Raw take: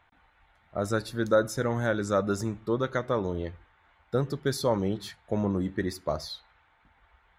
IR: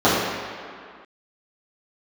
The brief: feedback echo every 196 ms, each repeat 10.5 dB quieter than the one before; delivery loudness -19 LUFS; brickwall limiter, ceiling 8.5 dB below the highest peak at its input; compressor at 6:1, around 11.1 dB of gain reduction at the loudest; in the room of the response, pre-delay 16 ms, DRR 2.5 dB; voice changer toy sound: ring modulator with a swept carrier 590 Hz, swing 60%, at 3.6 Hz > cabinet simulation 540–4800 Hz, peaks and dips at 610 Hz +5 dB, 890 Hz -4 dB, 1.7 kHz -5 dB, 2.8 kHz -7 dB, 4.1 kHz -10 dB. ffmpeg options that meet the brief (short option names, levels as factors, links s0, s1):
-filter_complex "[0:a]acompressor=threshold=0.0355:ratio=6,alimiter=level_in=1.33:limit=0.0631:level=0:latency=1,volume=0.75,aecho=1:1:196|392|588:0.299|0.0896|0.0269,asplit=2[s0][s1];[1:a]atrim=start_sample=2205,adelay=16[s2];[s1][s2]afir=irnorm=-1:irlink=0,volume=0.0398[s3];[s0][s3]amix=inputs=2:normalize=0,aeval=exprs='val(0)*sin(2*PI*590*n/s+590*0.6/3.6*sin(2*PI*3.6*n/s))':c=same,highpass=540,equalizer=f=610:t=q:w=4:g=5,equalizer=f=890:t=q:w=4:g=-4,equalizer=f=1700:t=q:w=4:g=-5,equalizer=f=2800:t=q:w=4:g=-7,equalizer=f=4100:t=q:w=4:g=-10,lowpass=f=4800:w=0.5412,lowpass=f=4800:w=1.3066,volume=11.2"